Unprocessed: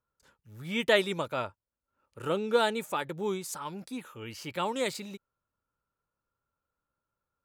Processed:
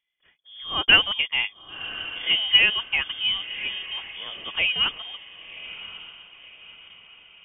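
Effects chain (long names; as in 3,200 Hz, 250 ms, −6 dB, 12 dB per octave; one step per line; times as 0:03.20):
dynamic equaliser 710 Hz, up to +6 dB, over −38 dBFS, Q 0.79
feedback delay with all-pass diffusion 1,076 ms, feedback 43%, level −14 dB
voice inversion scrambler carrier 3,400 Hz
level +3.5 dB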